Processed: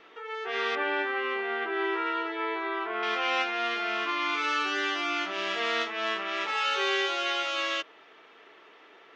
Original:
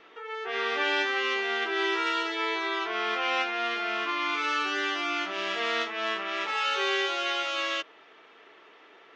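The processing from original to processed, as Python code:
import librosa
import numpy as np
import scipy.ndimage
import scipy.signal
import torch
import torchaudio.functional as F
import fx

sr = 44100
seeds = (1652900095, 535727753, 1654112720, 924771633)

y = fx.lowpass(x, sr, hz=1900.0, slope=12, at=(0.75, 3.03))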